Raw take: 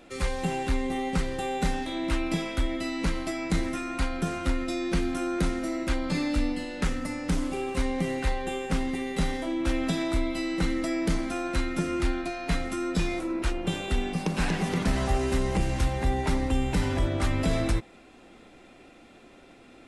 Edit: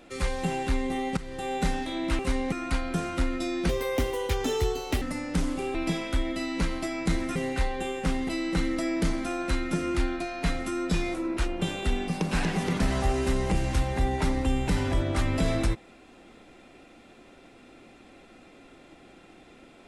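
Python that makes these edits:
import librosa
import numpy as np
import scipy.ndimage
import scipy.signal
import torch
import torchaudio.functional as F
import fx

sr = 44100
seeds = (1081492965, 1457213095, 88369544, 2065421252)

y = fx.edit(x, sr, fx.fade_in_from(start_s=1.17, length_s=0.36, floor_db=-16.0),
    fx.swap(start_s=2.19, length_s=1.61, other_s=7.69, other_length_s=0.33),
    fx.speed_span(start_s=4.97, length_s=1.99, speed=1.5),
    fx.cut(start_s=8.95, length_s=1.39), tone=tone)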